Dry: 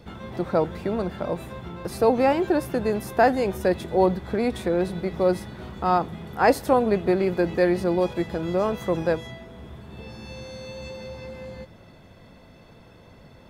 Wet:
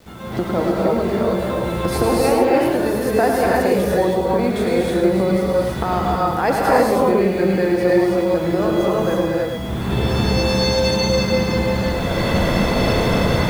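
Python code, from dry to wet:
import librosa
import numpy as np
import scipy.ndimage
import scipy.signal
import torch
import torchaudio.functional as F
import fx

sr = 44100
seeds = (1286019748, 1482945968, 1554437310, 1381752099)

p1 = fx.recorder_agc(x, sr, target_db=-12.0, rise_db_per_s=28.0, max_gain_db=30)
p2 = fx.hum_notches(p1, sr, base_hz=50, count=3)
p3 = fx.quant_dither(p2, sr, seeds[0], bits=8, dither='none')
p4 = p3 + fx.echo_single(p3, sr, ms=105, db=-6.5, dry=0)
p5 = fx.rev_gated(p4, sr, seeds[1], gate_ms=350, shape='rising', drr_db=-3.5)
y = F.gain(torch.from_numpy(p5), -1.5).numpy()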